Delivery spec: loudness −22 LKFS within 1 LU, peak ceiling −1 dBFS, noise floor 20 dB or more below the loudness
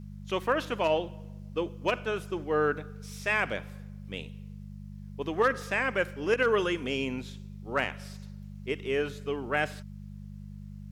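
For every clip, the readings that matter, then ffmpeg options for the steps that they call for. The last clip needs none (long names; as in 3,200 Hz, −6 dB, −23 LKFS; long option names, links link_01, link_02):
mains hum 50 Hz; hum harmonics up to 200 Hz; level of the hum −40 dBFS; integrated loudness −30.5 LKFS; sample peak −14.5 dBFS; target loudness −22.0 LKFS
→ -af "bandreject=frequency=50:width_type=h:width=4,bandreject=frequency=100:width_type=h:width=4,bandreject=frequency=150:width_type=h:width=4,bandreject=frequency=200:width_type=h:width=4"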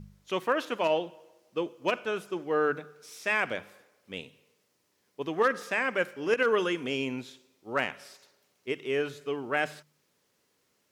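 mains hum none found; integrated loudness −30.0 LKFS; sample peak −14.5 dBFS; target loudness −22.0 LKFS
→ -af "volume=8dB"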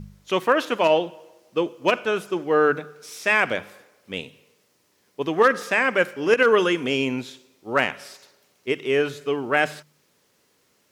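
integrated loudness −22.0 LKFS; sample peak −6.5 dBFS; background noise floor −65 dBFS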